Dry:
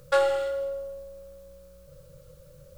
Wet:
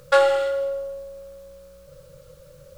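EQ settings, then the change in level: bass shelf 340 Hz -7.5 dB; treble shelf 7.6 kHz -6 dB; +7.5 dB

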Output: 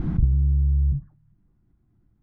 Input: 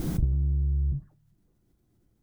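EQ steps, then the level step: low-pass 1.4 kHz 12 dB/octave; distance through air 63 m; peaking EQ 490 Hz -13 dB 1.2 oct; +6.0 dB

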